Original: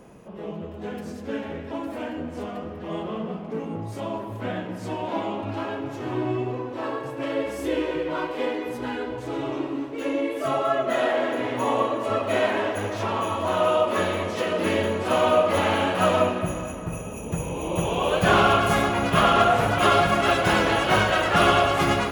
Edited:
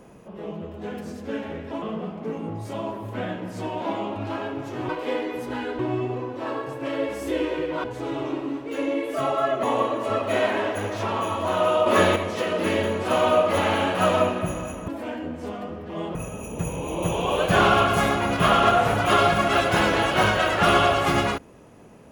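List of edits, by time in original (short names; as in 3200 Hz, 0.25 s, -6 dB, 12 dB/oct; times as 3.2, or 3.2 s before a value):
1.82–3.09 move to 16.88
8.21–9.11 move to 6.16
10.9–11.63 cut
13.86–14.16 gain +6 dB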